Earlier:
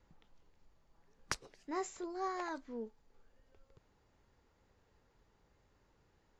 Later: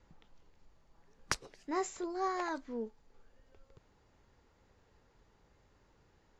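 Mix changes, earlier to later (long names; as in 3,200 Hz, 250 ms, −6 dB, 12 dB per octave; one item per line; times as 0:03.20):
speech +4.0 dB
background +4.0 dB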